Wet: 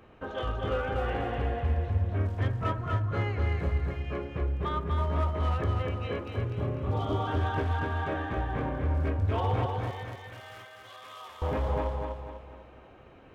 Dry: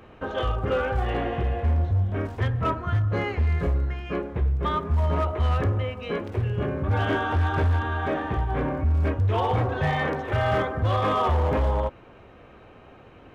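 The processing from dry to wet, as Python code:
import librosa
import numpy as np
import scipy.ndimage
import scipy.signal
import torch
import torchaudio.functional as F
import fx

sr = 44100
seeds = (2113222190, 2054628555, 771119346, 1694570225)

y = fx.spec_repair(x, sr, seeds[0], start_s=6.32, length_s=0.93, low_hz=1400.0, high_hz=3000.0, source='before')
y = fx.differentiator(y, sr, at=(9.66, 11.42))
y = fx.echo_feedback(y, sr, ms=247, feedback_pct=42, wet_db=-3.5)
y = y * 10.0 ** (-6.5 / 20.0)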